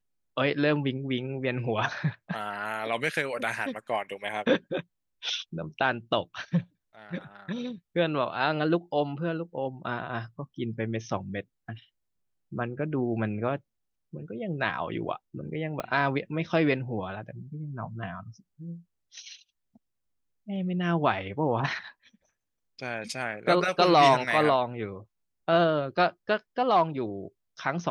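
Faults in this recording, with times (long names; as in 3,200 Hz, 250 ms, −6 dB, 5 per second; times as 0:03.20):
0:15.80: click −17 dBFS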